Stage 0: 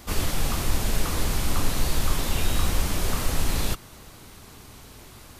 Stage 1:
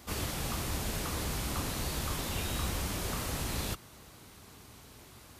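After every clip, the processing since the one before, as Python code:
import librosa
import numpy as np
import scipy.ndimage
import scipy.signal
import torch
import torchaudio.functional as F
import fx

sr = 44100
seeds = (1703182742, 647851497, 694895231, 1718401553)

y = scipy.signal.sosfilt(scipy.signal.butter(2, 53.0, 'highpass', fs=sr, output='sos'), x)
y = y * librosa.db_to_amplitude(-6.5)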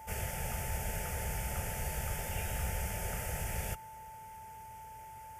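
y = fx.fixed_phaser(x, sr, hz=1100.0, stages=6)
y = y + 10.0 ** (-47.0 / 20.0) * np.sin(2.0 * np.pi * 880.0 * np.arange(len(y)) / sr)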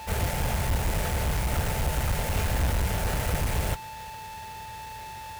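y = fx.halfwave_hold(x, sr)
y = y * librosa.db_to_amplitude(5.0)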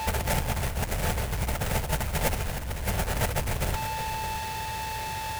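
y = fx.over_compress(x, sr, threshold_db=-30.0, ratio=-0.5)
y = y + 10.0 ** (-11.0 / 20.0) * np.pad(y, (int(613 * sr / 1000.0), 0))[:len(y)]
y = y * librosa.db_to_amplitude(3.5)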